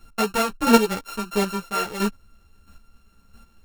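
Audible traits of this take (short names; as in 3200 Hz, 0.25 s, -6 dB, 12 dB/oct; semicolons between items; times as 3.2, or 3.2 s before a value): a buzz of ramps at a fixed pitch in blocks of 32 samples; chopped level 1.5 Hz, depth 60%, duty 15%; a shimmering, thickened sound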